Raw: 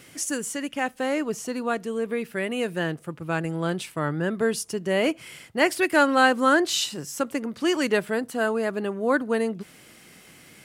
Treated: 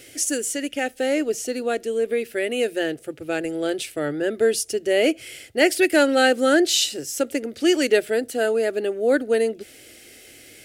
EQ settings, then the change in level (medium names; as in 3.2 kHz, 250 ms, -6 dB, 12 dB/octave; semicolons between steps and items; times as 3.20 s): static phaser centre 430 Hz, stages 4; +6.0 dB